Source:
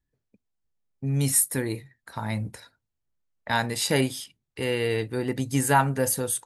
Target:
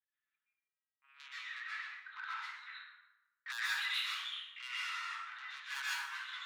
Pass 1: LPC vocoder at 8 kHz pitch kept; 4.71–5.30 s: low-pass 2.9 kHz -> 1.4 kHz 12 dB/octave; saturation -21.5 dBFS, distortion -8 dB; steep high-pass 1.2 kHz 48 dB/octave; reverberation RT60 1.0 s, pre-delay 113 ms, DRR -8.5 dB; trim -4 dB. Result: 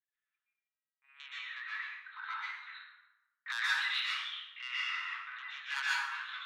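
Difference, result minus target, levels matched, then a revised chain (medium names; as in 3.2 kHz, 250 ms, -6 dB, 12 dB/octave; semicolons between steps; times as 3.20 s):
saturation: distortion -5 dB
LPC vocoder at 8 kHz pitch kept; 4.71–5.30 s: low-pass 2.9 kHz -> 1.4 kHz 12 dB/octave; saturation -30.5 dBFS, distortion -3 dB; steep high-pass 1.2 kHz 48 dB/octave; reverberation RT60 1.0 s, pre-delay 113 ms, DRR -8.5 dB; trim -4 dB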